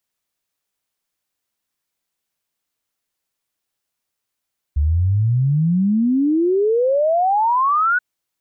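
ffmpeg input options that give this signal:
-f lavfi -i "aevalsrc='0.211*clip(min(t,3.23-t)/0.01,0,1)*sin(2*PI*70*3.23/log(1500/70)*(exp(log(1500/70)*t/3.23)-1))':d=3.23:s=44100"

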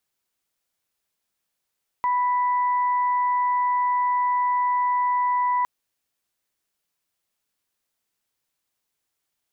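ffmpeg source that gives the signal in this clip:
-f lavfi -i "aevalsrc='0.112*sin(2*PI*988*t)+0.0188*sin(2*PI*1976*t)':d=3.61:s=44100"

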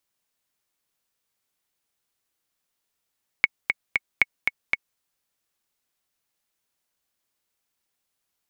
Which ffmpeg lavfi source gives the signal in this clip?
-f lavfi -i "aevalsrc='pow(10,(-3-4.5*gte(mod(t,3*60/232),60/232))/20)*sin(2*PI*2210*mod(t,60/232))*exp(-6.91*mod(t,60/232)/0.03)':d=1.55:s=44100"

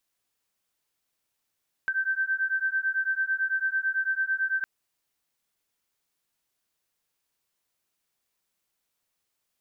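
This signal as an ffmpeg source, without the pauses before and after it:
-f lavfi -i "aevalsrc='0.0422*(sin(2*PI*1550*t)+sin(2*PI*1559*t))':d=2.76:s=44100"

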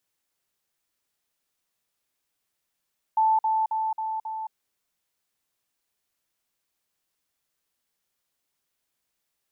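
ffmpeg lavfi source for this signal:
-f lavfi -i "aevalsrc='pow(10,(-17.5-3*floor(t/0.27))/20)*sin(2*PI*879*t)*clip(min(mod(t,0.27),0.22-mod(t,0.27))/0.005,0,1)':d=1.35:s=44100"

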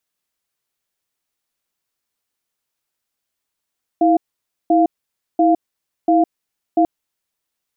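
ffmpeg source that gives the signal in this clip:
-f lavfi -i "aevalsrc='0.224*(sin(2*PI*325*t)+sin(2*PI*697*t))*clip(min(mod(t,0.69),0.16-mod(t,0.69))/0.005,0,1)':d=2.84:s=44100"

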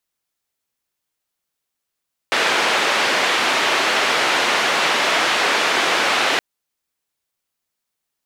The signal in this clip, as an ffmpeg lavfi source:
-f lavfi -i "anoisesrc=c=white:d=4.07:r=44100:seed=1,highpass=f=360,lowpass=f=2700,volume=-3.9dB"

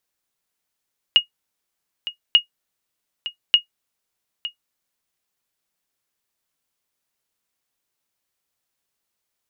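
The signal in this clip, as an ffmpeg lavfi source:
-f lavfi -i "aevalsrc='0.668*(sin(2*PI*2870*mod(t,1.19))*exp(-6.91*mod(t,1.19)/0.11)+0.178*sin(2*PI*2870*max(mod(t,1.19)-0.91,0))*exp(-6.91*max(mod(t,1.19)-0.91,0)/0.11))':d=3.57:s=44100"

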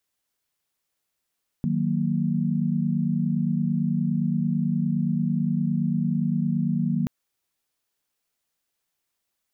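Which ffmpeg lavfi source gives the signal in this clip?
-f lavfi -i "aevalsrc='0.0531*(sin(2*PI*155.56*t)+sin(2*PI*185*t)+sin(2*PI*233.08*t))':d=5.43:s=44100"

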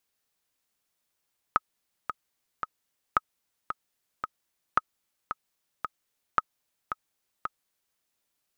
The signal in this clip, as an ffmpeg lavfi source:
-f lavfi -i "aevalsrc='pow(10,(-7.5-9.5*gte(mod(t,3*60/112),60/112))/20)*sin(2*PI*1270*mod(t,60/112))*exp(-6.91*mod(t,60/112)/0.03)':d=6.42:s=44100"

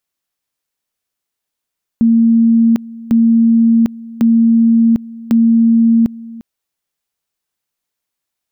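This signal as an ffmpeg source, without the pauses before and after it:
-f lavfi -i "aevalsrc='pow(10,(-6.5-20.5*gte(mod(t,1.1),0.75))/20)*sin(2*PI*229*t)':d=4.4:s=44100"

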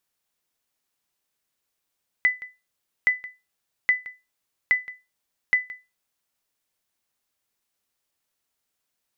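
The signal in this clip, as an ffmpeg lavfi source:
-f lavfi -i "aevalsrc='0.282*(sin(2*PI*2000*mod(t,0.82))*exp(-6.91*mod(t,0.82)/0.24)+0.119*sin(2*PI*2000*max(mod(t,0.82)-0.17,0))*exp(-6.91*max(mod(t,0.82)-0.17,0)/0.24))':d=4.1:s=44100"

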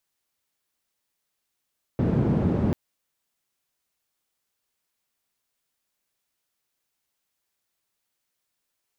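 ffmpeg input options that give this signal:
-f lavfi -i "anoisesrc=c=white:d=0.74:r=44100:seed=1,highpass=f=110,lowpass=f=180,volume=6.6dB"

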